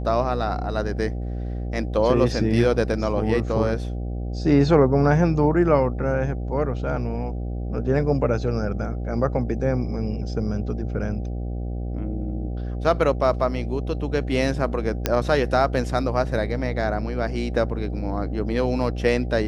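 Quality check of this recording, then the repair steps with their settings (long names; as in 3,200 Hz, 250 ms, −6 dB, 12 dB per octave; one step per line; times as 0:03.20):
mains buzz 60 Hz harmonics 13 −28 dBFS
0:15.06: click −5 dBFS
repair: click removal
hum removal 60 Hz, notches 13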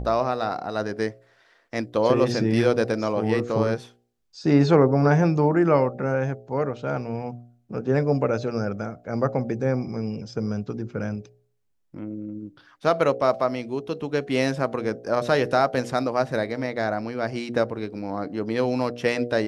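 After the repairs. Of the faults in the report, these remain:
0:15.06: click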